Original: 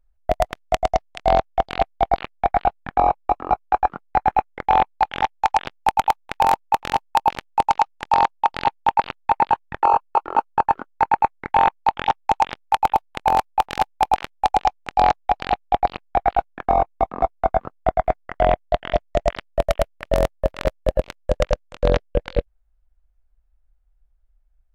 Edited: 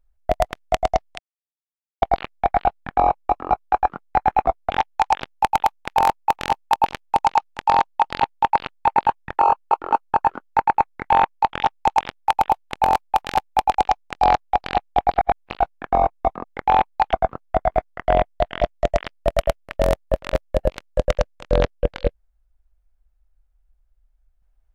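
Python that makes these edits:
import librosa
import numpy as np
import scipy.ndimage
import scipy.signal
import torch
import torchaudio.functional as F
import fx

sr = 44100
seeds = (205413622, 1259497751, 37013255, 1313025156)

y = fx.edit(x, sr, fx.silence(start_s=1.19, length_s=0.83),
    fx.swap(start_s=4.45, length_s=0.69, other_s=17.2, other_length_s=0.25),
    fx.cut(start_s=14.2, length_s=0.32),
    fx.reverse_span(start_s=15.92, length_s=0.39), tone=tone)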